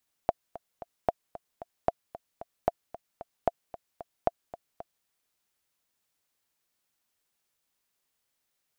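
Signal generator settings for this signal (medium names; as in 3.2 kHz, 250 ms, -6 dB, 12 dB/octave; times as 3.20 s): metronome 226 bpm, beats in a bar 3, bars 6, 685 Hz, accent 17 dB -9.5 dBFS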